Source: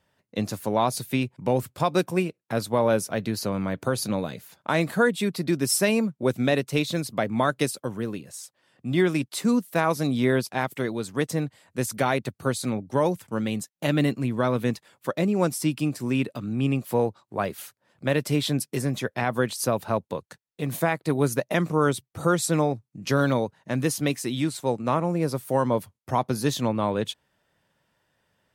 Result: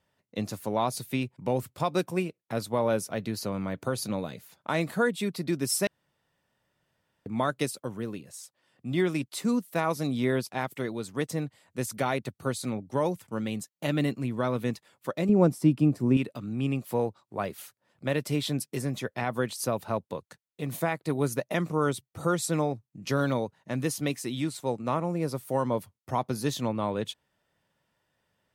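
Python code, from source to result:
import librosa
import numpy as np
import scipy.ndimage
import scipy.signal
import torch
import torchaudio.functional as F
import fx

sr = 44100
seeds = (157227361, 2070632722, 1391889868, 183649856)

y = fx.tilt_shelf(x, sr, db=8.5, hz=1200.0, at=(15.29, 16.17))
y = fx.edit(y, sr, fx.room_tone_fill(start_s=5.87, length_s=1.39), tone=tone)
y = fx.notch(y, sr, hz=1600.0, q=21.0)
y = F.gain(torch.from_numpy(y), -4.5).numpy()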